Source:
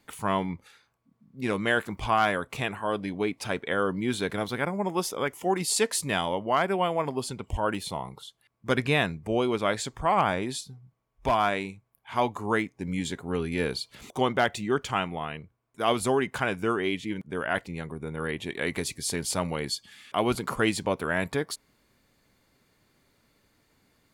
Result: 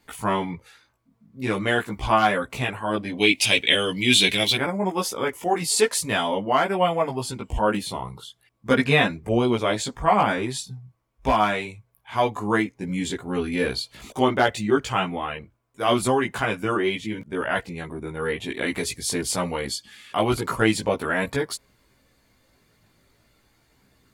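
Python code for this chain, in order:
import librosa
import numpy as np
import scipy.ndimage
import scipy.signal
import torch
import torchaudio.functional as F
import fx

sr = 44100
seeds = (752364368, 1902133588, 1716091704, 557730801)

y = fx.chorus_voices(x, sr, voices=4, hz=0.41, base_ms=17, depth_ms=2.2, mix_pct=50)
y = fx.high_shelf_res(y, sr, hz=1900.0, db=12.0, q=3.0, at=(3.17, 4.56), fade=0.02)
y = y * 10.0 ** (7.0 / 20.0)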